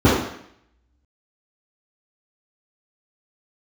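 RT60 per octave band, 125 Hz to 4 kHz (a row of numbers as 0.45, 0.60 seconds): 0.65, 0.70, 0.65, 0.70, 0.75, 0.70 seconds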